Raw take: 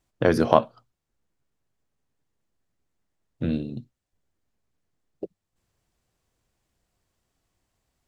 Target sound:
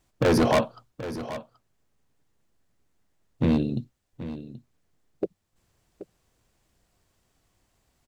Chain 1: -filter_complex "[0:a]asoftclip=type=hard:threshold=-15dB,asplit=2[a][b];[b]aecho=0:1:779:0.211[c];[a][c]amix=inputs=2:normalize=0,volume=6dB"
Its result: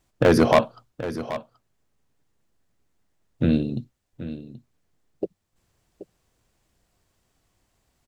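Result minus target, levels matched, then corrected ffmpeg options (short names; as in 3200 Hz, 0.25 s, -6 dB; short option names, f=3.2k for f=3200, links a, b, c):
hard clip: distortion -5 dB
-filter_complex "[0:a]asoftclip=type=hard:threshold=-22.5dB,asplit=2[a][b];[b]aecho=0:1:779:0.211[c];[a][c]amix=inputs=2:normalize=0,volume=6dB"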